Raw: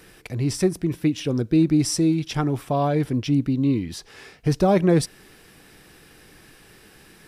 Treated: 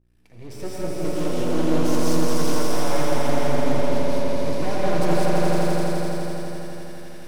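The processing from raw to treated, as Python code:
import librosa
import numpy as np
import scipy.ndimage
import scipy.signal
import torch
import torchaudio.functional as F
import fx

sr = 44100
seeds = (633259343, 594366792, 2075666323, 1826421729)

y = fx.fade_in_head(x, sr, length_s=0.91)
y = fx.highpass(y, sr, hz=140.0, slope=12, at=(2.25, 4.71))
y = np.clip(10.0 ** (16.5 / 20.0) * y, -1.0, 1.0) / 10.0 ** (16.5 / 20.0)
y = fx.add_hum(y, sr, base_hz=60, snr_db=30)
y = np.maximum(y, 0.0)
y = fx.echo_swell(y, sr, ms=84, loudest=5, wet_db=-4.0)
y = fx.rev_gated(y, sr, seeds[0], gate_ms=230, shape='rising', drr_db=-4.5)
y = fx.doppler_dist(y, sr, depth_ms=0.33)
y = F.gain(torch.from_numpy(y), -6.5).numpy()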